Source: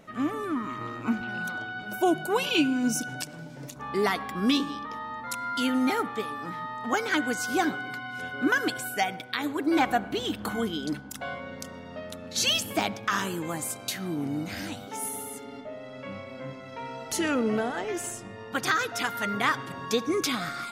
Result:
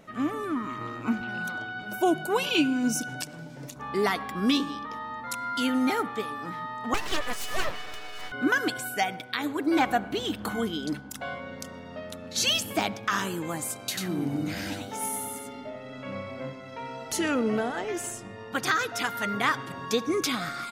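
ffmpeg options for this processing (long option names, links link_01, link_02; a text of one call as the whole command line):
ffmpeg -i in.wav -filter_complex "[0:a]asettb=1/sr,asplit=3[link_01][link_02][link_03];[link_01]atrim=end=6.944[link_04];[link_02]atrim=start=6.94:end=8.32,asetpts=PTS-STARTPTS,afade=type=in:duration=0.004:curve=qsin,afade=type=out:start_time=1.376:duration=0.004:curve=qsin,aeval=exprs='abs(val(0))':channel_layout=same[link_05];[link_03]atrim=start=8.316[link_06];[link_04][link_05]acrossfade=duration=0.004:curve1=hsin:curve2=qsin[link_07];[link_07][link_06]acrossfade=duration=0.004:curve1=qsin:curve2=hsin,asplit=3[link_08][link_09][link_10];[link_08]afade=type=out:start_time=13.95:duration=0.02[link_11];[link_09]aecho=1:1:92:0.708,afade=type=in:start_time=13.95:duration=0.02,afade=type=out:start_time=16.49:duration=0.02[link_12];[link_10]afade=type=in:start_time=16.49:duration=0.02[link_13];[link_11][link_12][link_13]amix=inputs=3:normalize=0" out.wav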